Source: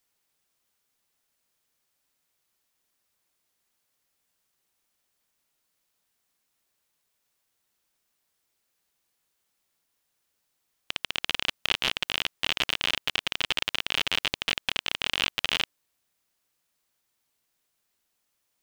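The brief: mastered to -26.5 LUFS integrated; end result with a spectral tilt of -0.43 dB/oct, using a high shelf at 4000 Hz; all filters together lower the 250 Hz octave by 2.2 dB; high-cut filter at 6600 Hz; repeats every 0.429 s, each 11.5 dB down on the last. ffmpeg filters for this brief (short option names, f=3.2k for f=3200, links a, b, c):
-af "lowpass=6.6k,equalizer=f=250:t=o:g=-3,highshelf=f=4k:g=3.5,aecho=1:1:429|858|1287:0.266|0.0718|0.0194"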